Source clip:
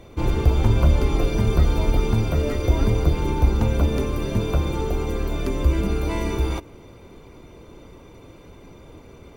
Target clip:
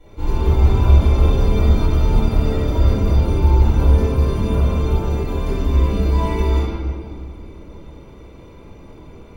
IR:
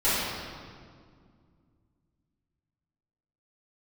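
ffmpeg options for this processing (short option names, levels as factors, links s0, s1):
-filter_complex "[1:a]atrim=start_sample=2205[s0];[0:a][s0]afir=irnorm=-1:irlink=0,volume=0.211"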